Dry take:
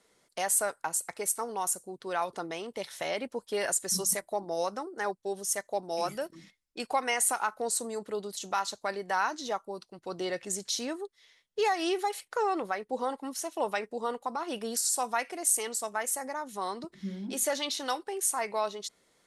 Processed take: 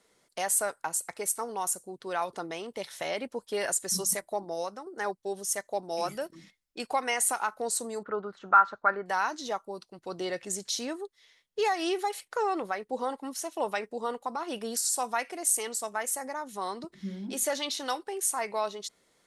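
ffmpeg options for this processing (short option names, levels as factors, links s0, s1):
-filter_complex "[0:a]asettb=1/sr,asplit=3[s0][s1][s2];[s0]atrim=end=8.034[s3];[s1]atrim=start=8.03:end=9.06,asetpts=PTS-STARTPTS,afade=t=in:d=0.004:c=qsin,afade=t=out:st=1.026:d=0.004:c=qsin,lowpass=f=1400:t=q:w=6.6[s4];[s2]atrim=start=9.056[s5];[s3][s4]acrossfade=d=0.004:c1=hsin:c2=qsin[s6];[s6][s5]acrossfade=d=0.004:c1=qsin:c2=hsin,asplit=2[s7][s8];[s7]atrim=end=4.86,asetpts=PTS-STARTPTS,afade=t=out:st=4.38:d=0.48:silence=0.421697[s9];[s8]atrim=start=4.86,asetpts=PTS-STARTPTS,afade=t=in:d=0.004:c=hsin:silence=0.421697[s10];[s9][s10]concat=n=2:v=0:a=1"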